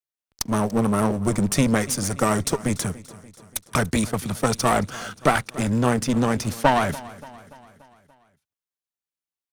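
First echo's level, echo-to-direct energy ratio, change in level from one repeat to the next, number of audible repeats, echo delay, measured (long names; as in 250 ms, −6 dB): −19.0 dB, −17.5 dB, −5.0 dB, 4, 289 ms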